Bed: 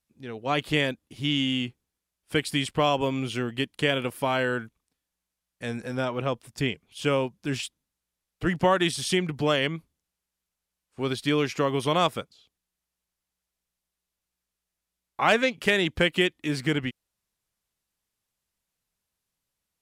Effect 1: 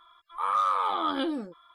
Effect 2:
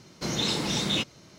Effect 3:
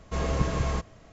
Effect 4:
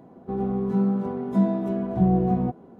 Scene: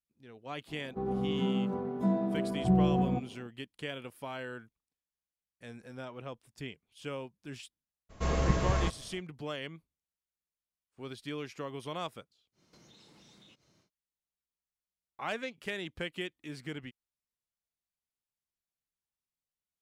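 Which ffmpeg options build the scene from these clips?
ffmpeg -i bed.wav -i cue0.wav -i cue1.wav -i cue2.wav -i cue3.wav -filter_complex "[0:a]volume=-15dB[link_01];[4:a]bandreject=frequency=50:width_type=h:width=6,bandreject=frequency=100:width_type=h:width=6,bandreject=frequency=150:width_type=h:width=6,bandreject=frequency=200:width_type=h:width=6,bandreject=frequency=250:width_type=h:width=6,bandreject=frequency=300:width_type=h:width=6,bandreject=frequency=350:width_type=h:width=6[link_02];[2:a]acompressor=threshold=-41dB:ratio=6:attack=3.2:release=140:knee=1:detection=peak[link_03];[link_02]atrim=end=2.79,asetpts=PTS-STARTPTS,volume=-5dB,afade=type=in:duration=0.004:curve=hsin,afade=type=out:start_time=2.786:duration=0.004:curve=hsin,adelay=680[link_04];[3:a]atrim=end=1.12,asetpts=PTS-STARTPTS,volume=-1.5dB,afade=type=in:duration=0.02,afade=type=out:start_time=1.1:duration=0.02,adelay=8090[link_05];[link_03]atrim=end=1.38,asetpts=PTS-STARTPTS,volume=-16.5dB,afade=type=in:duration=0.1,afade=type=out:start_time=1.28:duration=0.1,adelay=552132S[link_06];[link_01][link_04][link_05][link_06]amix=inputs=4:normalize=0" out.wav

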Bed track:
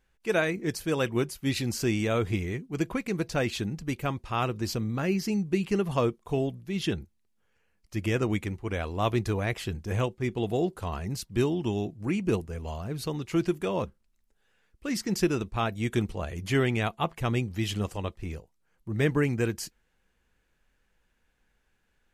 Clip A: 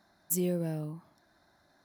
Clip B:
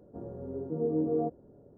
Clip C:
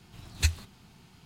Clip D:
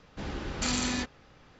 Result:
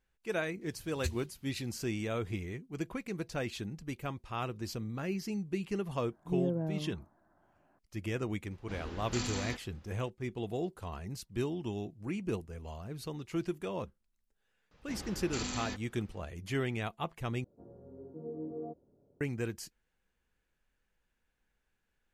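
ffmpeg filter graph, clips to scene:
ffmpeg -i bed.wav -i cue0.wav -i cue1.wav -i cue2.wav -i cue3.wav -filter_complex "[4:a]asplit=2[link_01][link_02];[0:a]volume=-8.5dB[link_03];[3:a]equalizer=frequency=880:width=0.52:gain=-8.5[link_04];[1:a]lowpass=frequency=1400:width=0.5412,lowpass=frequency=1400:width=1.3066[link_05];[link_03]asplit=2[link_06][link_07];[link_06]atrim=end=17.444[link_08];[2:a]atrim=end=1.77,asetpts=PTS-STARTPTS,volume=-12dB[link_09];[link_07]atrim=start=19.206[link_10];[link_04]atrim=end=1.25,asetpts=PTS-STARTPTS,volume=-10.5dB,afade=type=in:duration=0.004:curve=hsin,afade=type=out:start_time=1.246:duration=0.004:curve=hsin,adelay=610[link_11];[link_05]atrim=end=1.84,asetpts=PTS-STARTPTS,volume=-1dB,afade=type=in:duration=0.004:curve=hsin,afade=type=out:start_time=1.836:duration=0.004:curve=hsin,adelay=5950[link_12];[link_01]atrim=end=1.59,asetpts=PTS-STARTPTS,volume=-8dB,afade=type=in:duration=0.004:curve=hsin,afade=type=out:start_time=1.586:duration=0.004:curve=hsin,adelay=8510[link_13];[link_02]atrim=end=1.59,asetpts=PTS-STARTPTS,volume=-8.5dB,afade=type=in:duration=0.004:curve=hsin,afade=type=out:start_time=1.586:duration=0.004:curve=hsin,adelay=14710[link_14];[link_08][link_09]acrossfade=duration=0.004:curve1=hsin:curve2=hsin[link_15];[link_15][link_10]acrossfade=duration=0.004:curve1=hsin:curve2=hsin[link_16];[link_16][link_11][link_12][link_13][link_14]amix=inputs=5:normalize=0" out.wav

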